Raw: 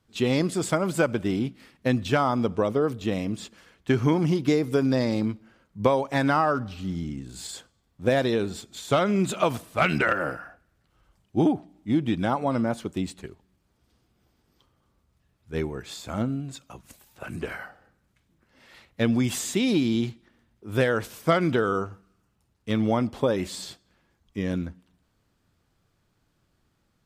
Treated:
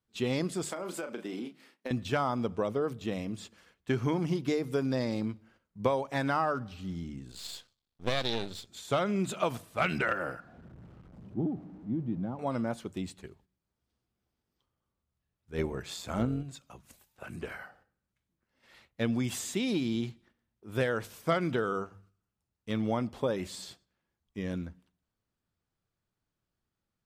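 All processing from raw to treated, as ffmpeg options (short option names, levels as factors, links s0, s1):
-filter_complex "[0:a]asettb=1/sr,asplit=3[s0][s1][s2];[s0]atrim=end=0.634[s3];[s1]atrim=start=0.63:end=1.91,asetpts=PTS-STARTPTS,afade=t=in:d=0.004:c=qsin,afade=t=out:st=1.276:d=0.004:c=qsin,highpass=f=230:w=0.5412,highpass=f=230:w=1.3066,asplit=2[s4][s5];[s5]adelay=33,volume=0.355[s6];[s4][s6]amix=inputs=2:normalize=0,atrim=end_sample=56448,acompressor=threshold=0.0562:ratio=10:attack=3.2:release=140:knee=1:detection=peak[s7];[s2]atrim=start=1.906[s8];[s3][s7]acrossfade=d=0.004:c1=hsin:c2=qsin[s9];[s9][s8]acrossfade=d=0.004:c1=qsin:c2=hsin,asettb=1/sr,asplit=3[s10][s11][s12];[s10]atrim=end=7.314[s13];[s11]atrim=start=7.31:end=8.68,asetpts=PTS-STARTPTS,afade=t=in:d=0.004:c=qsin,afade=t=out:st=1.366:d=0.004:c=qsin,aeval=exprs='max(val(0),0)':c=same,equalizer=f=4000:t=o:w=1.2:g=11[s14];[s12]atrim=start=8.676[s15];[s13][s14]acrossfade=d=0.004:c1=hsin:c2=qsin[s16];[s16][s15]acrossfade=d=0.004:c1=qsin:c2=hsin,asettb=1/sr,asplit=3[s17][s18][s19];[s17]atrim=end=10.404[s20];[s18]atrim=start=10.4:end=12.39,asetpts=PTS-STARTPTS,afade=t=in:d=0.004:c=qsin,afade=t=out:st=1.986:d=0.004:c=qsin,aeval=exprs='val(0)+0.5*0.0266*sgn(val(0))':c=same,bandpass=f=170:t=q:w=0.98[s21];[s19]atrim=start=12.386[s22];[s20][s21]acrossfade=d=0.004:c1=hsin:c2=qsin[s23];[s23][s22]acrossfade=d=0.004:c1=qsin:c2=hsin,asettb=1/sr,asplit=3[s24][s25][s26];[s24]atrim=end=15.584[s27];[s25]atrim=start=15.58:end=16.43,asetpts=PTS-STARTPTS,afade=t=in:d=0.004:c=qsin,afade=t=out:st=0.846:d=0.004:c=qsin,acontrast=73,tremolo=f=180:d=0.462[s28];[s26]atrim=start=16.426[s29];[s27][s28]acrossfade=d=0.004:c1=hsin:c2=qsin[s30];[s30][s29]acrossfade=d=0.004:c1=qsin:c2=hsin,agate=range=0.355:threshold=0.00178:ratio=16:detection=peak,equalizer=f=290:w=3.9:g=-2.5,bandreject=f=50:t=h:w=6,bandreject=f=100:t=h:w=6,bandreject=f=150:t=h:w=6,volume=0.473"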